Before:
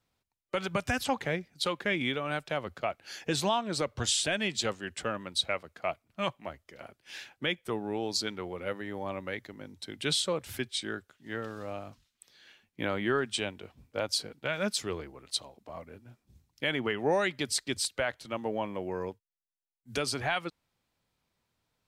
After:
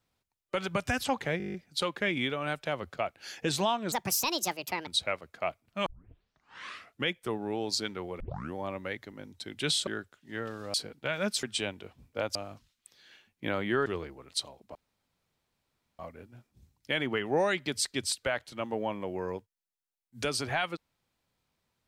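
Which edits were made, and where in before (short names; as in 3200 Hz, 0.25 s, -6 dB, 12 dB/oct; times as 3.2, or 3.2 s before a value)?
1.38 stutter 0.02 s, 9 plays
3.76–5.29 speed 161%
6.28 tape start 1.23 s
8.62 tape start 0.35 s
10.29–10.84 cut
11.71–13.22 swap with 14.14–14.83
15.72 insert room tone 1.24 s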